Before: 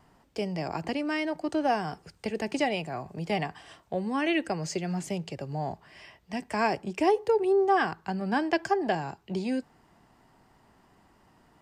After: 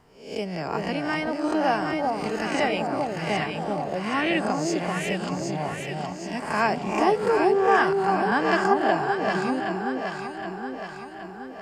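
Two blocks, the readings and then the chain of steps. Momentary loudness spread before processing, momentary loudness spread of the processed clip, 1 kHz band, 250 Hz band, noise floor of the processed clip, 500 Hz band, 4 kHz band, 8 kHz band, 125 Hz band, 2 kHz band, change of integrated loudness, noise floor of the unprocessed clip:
12 LU, 12 LU, +6.5 dB, +4.0 dB, −39 dBFS, +4.5 dB, +5.0 dB, +5.5 dB, +3.5 dB, +7.5 dB, +4.5 dB, −63 dBFS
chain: peak hold with a rise ahead of every peak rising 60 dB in 0.55 s
dynamic equaliser 1,300 Hz, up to +6 dB, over −42 dBFS, Q 1.8
on a send: delay that swaps between a low-pass and a high-pass 385 ms, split 1,000 Hz, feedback 74%, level −2 dB

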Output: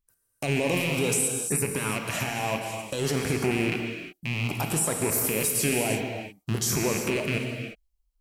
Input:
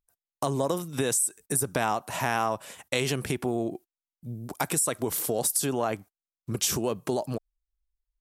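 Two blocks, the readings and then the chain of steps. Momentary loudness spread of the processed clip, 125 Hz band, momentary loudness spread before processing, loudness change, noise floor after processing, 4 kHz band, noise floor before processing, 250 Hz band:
9 LU, +5.0 dB, 13 LU, +1.5 dB, −74 dBFS, +2.5 dB, below −85 dBFS, +3.0 dB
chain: loose part that buzzes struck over −39 dBFS, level −19 dBFS
low-shelf EQ 370 Hz +3 dB
notch filter 3,600 Hz, Q 14
brickwall limiter −20 dBFS, peak gain reduction 10 dB
auto-filter notch saw up 0.57 Hz 660–3,800 Hz
reverb whose tail is shaped and stops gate 380 ms flat, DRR 2.5 dB
level +3.5 dB

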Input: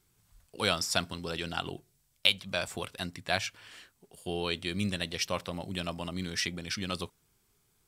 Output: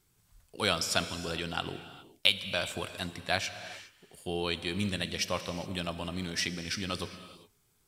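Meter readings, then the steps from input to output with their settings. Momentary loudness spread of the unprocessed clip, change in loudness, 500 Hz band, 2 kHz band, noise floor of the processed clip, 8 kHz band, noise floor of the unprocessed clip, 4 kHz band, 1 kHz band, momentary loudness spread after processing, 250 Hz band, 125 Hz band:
13 LU, 0.0 dB, +0.5 dB, +0.5 dB, −70 dBFS, +0.5 dB, −72 dBFS, +0.5 dB, +0.5 dB, 17 LU, 0.0 dB, 0.0 dB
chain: reverb whose tail is shaped and stops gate 440 ms flat, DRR 10.5 dB

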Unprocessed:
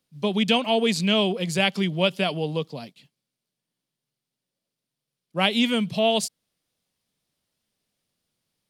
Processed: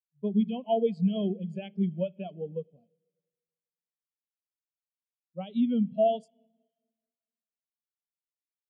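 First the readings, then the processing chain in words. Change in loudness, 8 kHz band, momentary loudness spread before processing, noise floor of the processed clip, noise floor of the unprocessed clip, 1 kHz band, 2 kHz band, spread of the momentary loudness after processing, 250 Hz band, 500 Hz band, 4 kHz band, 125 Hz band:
−6.5 dB, below −35 dB, 10 LU, below −85 dBFS, below −85 dBFS, −7.5 dB, below −25 dB, 12 LU, −3.5 dB, −5.0 dB, −24.0 dB, −5.0 dB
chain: brickwall limiter −12.5 dBFS, peak gain reduction 6.5 dB
spring reverb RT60 3.8 s, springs 49/54 ms, chirp 25 ms, DRR 10 dB
every bin expanded away from the loudest bin 2.5 to 1
level −4.5 dB

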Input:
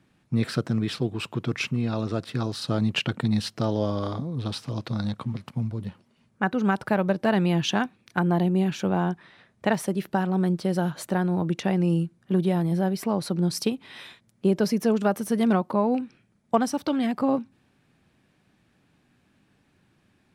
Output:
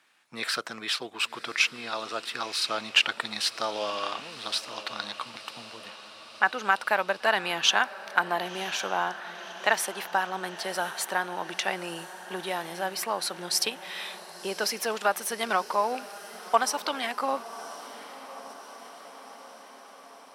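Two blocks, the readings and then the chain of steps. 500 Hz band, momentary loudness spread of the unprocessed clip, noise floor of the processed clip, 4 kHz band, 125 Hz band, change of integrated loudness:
−5.0 dB, 8 LU, −49 dBFS, +6.5 dB, −24.5 dB, −2.5 dB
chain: high-pass filter 1,000 Hz 12 dB per octave
on a send: feedback delay with all-pass diffusion 1,047 ms, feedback 64%, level −15 dB
on the sum: level +7 dB
MP3 128 kbit/s 48,000 Hz

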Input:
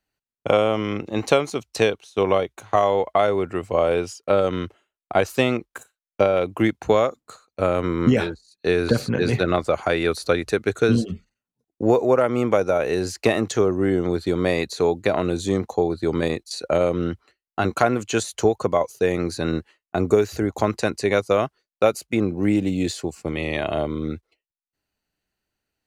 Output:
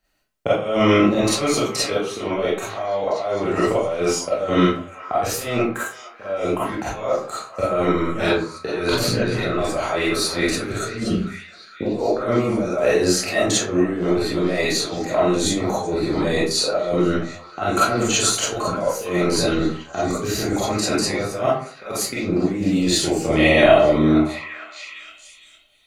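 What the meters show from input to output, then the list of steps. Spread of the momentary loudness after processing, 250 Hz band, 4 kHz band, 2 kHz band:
9 LU, +2.5 dB, +8.0 dB, +3.5 dB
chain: compressor whose output falls as the input rises −25 dBFS, ratio −0.5
echo through a band-pass that steps 459 ms, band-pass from 1,100 Hz, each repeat 0.7 octaves, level −10 dB
comb and all-pass reverb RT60 0.43 s, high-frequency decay 0.65×, pre-delay 5 ms, DRR −10 dB
level −2.5 dB

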